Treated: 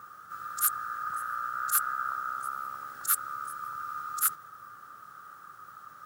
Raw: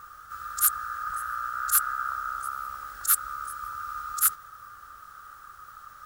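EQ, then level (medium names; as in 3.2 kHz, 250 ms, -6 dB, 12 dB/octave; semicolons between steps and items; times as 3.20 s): high-pass 140 Hz 24 dB/octave; tilt EQ -2.5 dB/octave; treble shelf 8.4 kHz +7.5 dB; -1.0 dB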